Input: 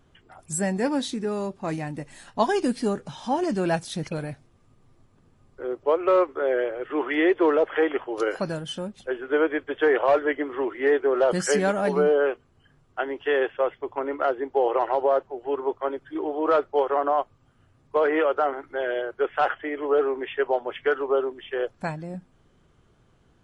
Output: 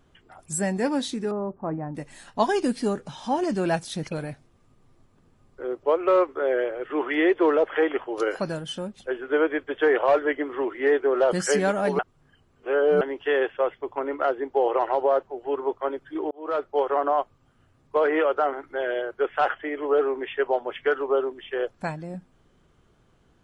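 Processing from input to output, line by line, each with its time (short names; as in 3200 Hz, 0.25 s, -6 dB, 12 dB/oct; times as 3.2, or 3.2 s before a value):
1.31–1.95 LPF 1300 Hz 24 dB/oct
11.99–13.01 reverse
16.31–17 fade in equal-power
whole clip: bell 110 Hz -3 dB 0.77 oct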